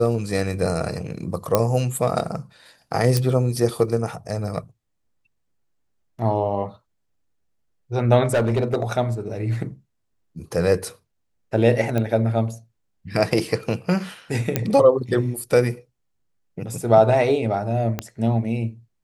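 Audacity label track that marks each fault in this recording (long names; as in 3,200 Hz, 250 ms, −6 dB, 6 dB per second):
1.550000	1.550000	click −3 dBFS
3.170000	3.170000	click
8.250000	8.830000	clipping −15 dBFS
11.980000	11.980000	click −12 dBFS
14.560000	14.560000	click −5 dBFS
17.990000	17.990000	click −10 dBFS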